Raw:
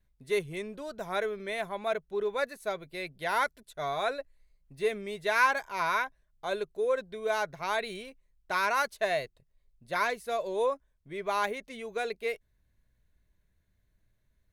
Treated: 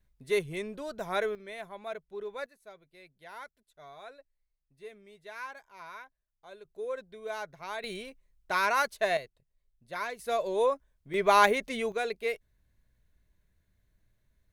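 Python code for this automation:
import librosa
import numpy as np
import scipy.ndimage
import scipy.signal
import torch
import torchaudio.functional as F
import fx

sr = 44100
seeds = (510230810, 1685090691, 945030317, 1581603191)

y = fx.gain(x, sr, db=fx.steps((0.0, 1.0), (1.35, -8.0), (2.46, -17.0), (6.65, -7.5), (7.84, 1.0), (9.17, -6.5), (10.19, 2.0), (11.14, 8.5), (11.92, 1.0)))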